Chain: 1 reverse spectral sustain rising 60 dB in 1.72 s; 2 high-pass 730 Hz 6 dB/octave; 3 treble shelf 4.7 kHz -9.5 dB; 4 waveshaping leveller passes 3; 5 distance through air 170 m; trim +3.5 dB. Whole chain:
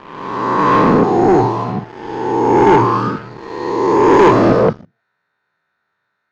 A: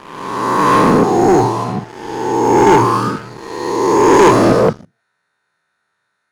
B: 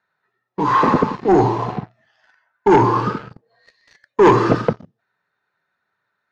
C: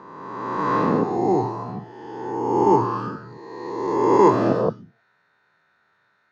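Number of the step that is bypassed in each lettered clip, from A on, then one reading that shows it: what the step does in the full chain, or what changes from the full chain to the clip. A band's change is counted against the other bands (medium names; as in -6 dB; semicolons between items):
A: 5, 4 kHz band +4.5 dB; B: 1, crest factor change +3.5 dB; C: 4, crest factor change +8.0 dB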